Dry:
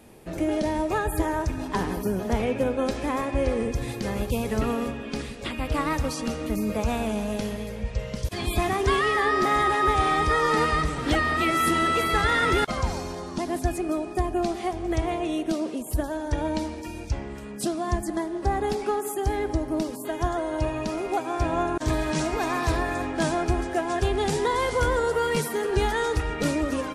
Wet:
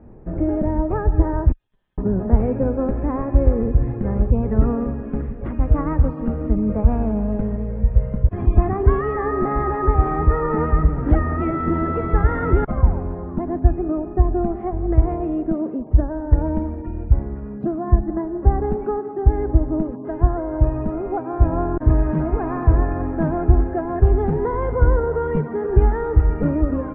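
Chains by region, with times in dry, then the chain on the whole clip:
1.52–1.98 s: Butterworth band-pass 3.5 kHz, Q 4.1 + valve stage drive 36 dB, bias 0.4 + compression, threshold -53 dBFS
whole clip: low-pass 1.7 kHz 24 dB/octave; tilt EQ -3.5 dB/octave; trim -1 dB

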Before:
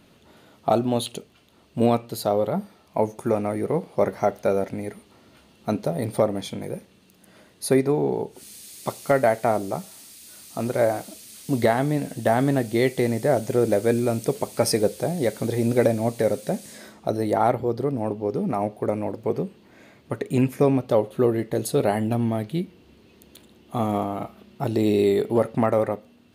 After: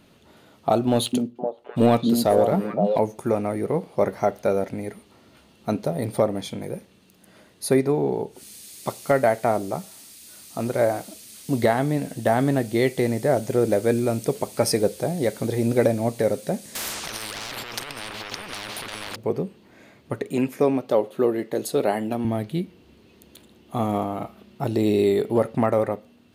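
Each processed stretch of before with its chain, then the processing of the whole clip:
0.87–2.99 s: expander -49 dBFS + waveshaping leveller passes 1 + repeats whose band climbs or falls 258 ms, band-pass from 230 Hz, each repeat 1.4 oct, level 0 dB
16.75–19.16 s: overdrive pedal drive 26 dB, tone 1.4 kHz, clips at -7 dBFS + compressor with a negative ratio -23 dBFS + spectrum-flattening compressor 10:1
20.30–22.25 s: high-pass 220 Hz + peaking EQ 10 kHz -3 dB 0.36 oct
whole clip: none

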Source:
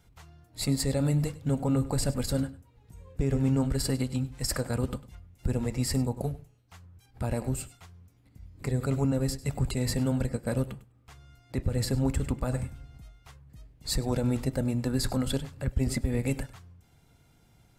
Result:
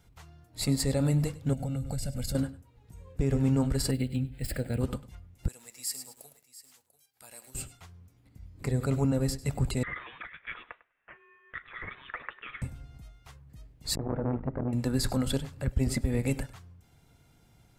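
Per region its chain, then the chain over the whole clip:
1.53–2.35 s: peaking EQ 980 Hz -12 dB 1.2 oct + comb 1.4 ms, depth 85% + compression, threshold -29 dBFS
3.91–4.81 s: median filter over 3 samples + static phaser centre 2.6 kHz, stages 4
5.48–7.55 s: differentiator + delay 693 ms -16.5 dB + bit-crushed delay 109 ms, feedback 35%, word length 9-bit, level -9 dB
9.83–12.62 s: resonant high-pass 2.1 kHz, resonance Q 2.7 + treble shelf 3 kHz +6.5 dB + frequency inversion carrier 3.9 kHz
13.95–14.73 s: low-pass 1.6 kHz 24 dB/octave + transformer saturation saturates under 430 Hz
whole clip: none

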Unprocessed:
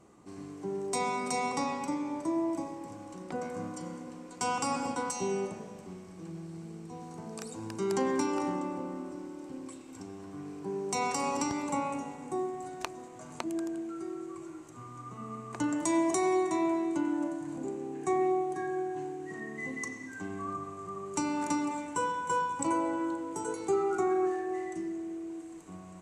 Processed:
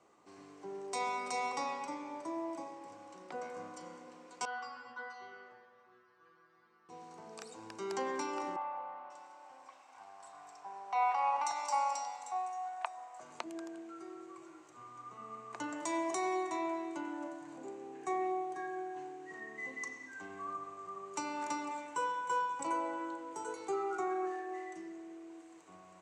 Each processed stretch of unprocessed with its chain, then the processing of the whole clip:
4.45–6.89 s: low-pass 4.8 kHz 24 dB/octave + high-order bell 1.4 kHz +13.5 dB 1 oct + inharmonic resonator 120 Hz, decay 0.46 s, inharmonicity 0.002
8.56–13.20 s: resonant low shelf 520 Hz -12.5 dB, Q 3 + bands offset in time lows, highs 540 ms, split 3.4 kHz
whole clip: high-pass 55 Hz; three-band isolator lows -15 dB, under 420 Hz, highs -13 dB, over 6.9 kHz; trim -3 dB

